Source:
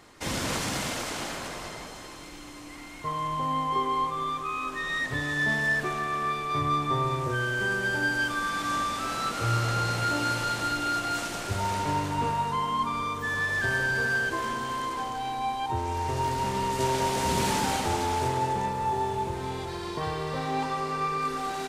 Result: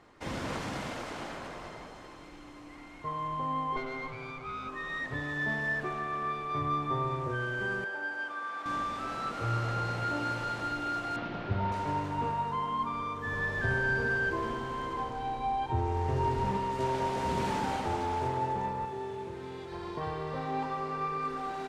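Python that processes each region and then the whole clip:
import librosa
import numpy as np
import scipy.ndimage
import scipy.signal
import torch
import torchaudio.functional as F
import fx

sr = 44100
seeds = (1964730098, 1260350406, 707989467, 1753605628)

y = fx.chain(x, sr, fx.lower_of_two(delay_ms=8.1),
    fx.high_shelf(hz=7000.0, db=-7.0),
    fx.notch(hz=1800.0, q=6.0), at=(3.76, 4.69))
y = fx.chain(y, sr, fx.highpass(hz=550.0, slope=12),
    fx.high_shelf(hz=2200.0, db=-9.0), at=(7.84, 8.66))
y = fx.chain(y, sr, fx.lowpass(hz=4100.0, slope=24),
    fx.peak_eq(hz=160.0, db=7.5, octaves=1.8), at=(11.16, 11.72))
y = fx.chain(y, sr, fx.low_shelf(hz=200.0, db=9.0),
    fx.room_flutter(wall_m=11.4, rt60_s=0.57), at=(13.26, 16.57))
y = fx.chain(y, sr, fx.highpass(hz=190.0, slope=6),
    fx.peak_eq(hz=820.0, db=-8.5, octaves=1.0),
    fx.doubler(ms=28.0, db=-13.5), at=(18.85, 19.72))
y = fx.lowpass(y, sr, hz=1400.0, slope=6)
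y = fx.low_shelf(y, sr, hz=430.0, db=-3.0)
y = F.gain(torch.from_numpy(y), -2.0).numpy()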